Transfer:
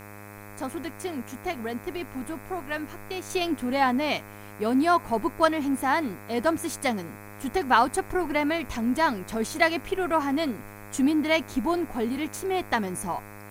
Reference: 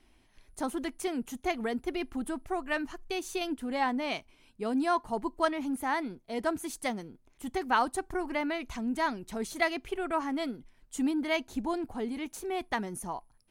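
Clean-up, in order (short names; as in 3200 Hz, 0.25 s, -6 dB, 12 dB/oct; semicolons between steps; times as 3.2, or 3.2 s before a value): de-hum 102.8 Hz, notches 25; noise print and reduce 17 dB; gain correction -6.5 dB, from 3.3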